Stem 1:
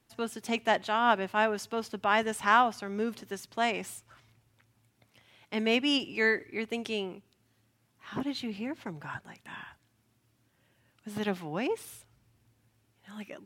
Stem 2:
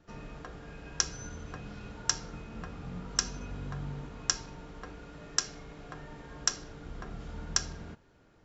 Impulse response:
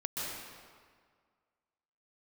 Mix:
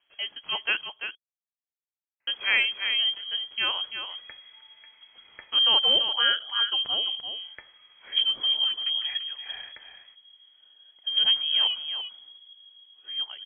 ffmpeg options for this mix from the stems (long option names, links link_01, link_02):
-filter_complex "[0:a]asubboost=boost=9.5:cutoff=190,volume=0.5dB,asplit=3[link_01][link_02][link_03];[link_01]atrim=end=0.81,asetpts=PTS-STARTPTS,afade=type=out:start_time=0.806:duration=0.004:curve=hsin[link_04];[link_02]atrim=start=0.81:end=2.27,asetpts=PTS-STARTPTS,volume=0[link_05];[link_03]atrim=start=2.27,asetpts=PTS-STARTPTS,afade=type=in:duration=0.004:curve=hsin[link_06];[link_04][link_05][link_06]concat=n=3:v=0:a=1,asplit=3[link_07][link_08][link_09];[link_08]volume=-8.5dB[link_10];[1:a]highpass=frequency=980:width=0.5412,highpass=frequency=980:width=1.3066,adelay=2200,volume=-7dB[link_11];[link_09]apad=whole_len=469451[link_12];[link_11][link_12]sidechaincompress=threshold=-46dB:ratio=8:attack=42:release=275[link_13];[link_10]aecho=0:1:340:1[link_14];[link_07][link_13][link_14]amix=inputs=3:normalize=0,highpass=49,lowpass=frequency=2900:width_type=q:width=0.5098,lowpass=frequency=2900:width_type=q:width=0.6013,lowpass=frequency=2900:width_type=q:width=0.9,lowpass=frequency=2900:width_type=q:width=2.563,afreqshift=-3400"